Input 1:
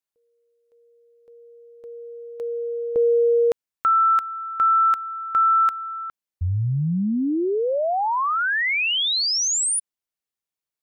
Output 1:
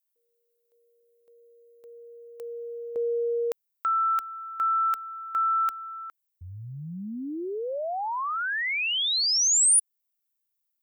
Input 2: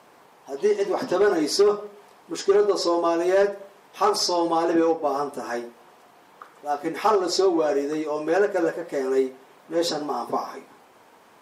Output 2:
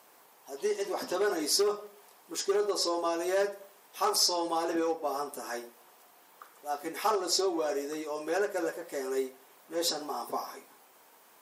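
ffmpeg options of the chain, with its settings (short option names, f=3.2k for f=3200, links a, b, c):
-af "aemphasis=mode=production:type=bsi,volume=-7.5dB"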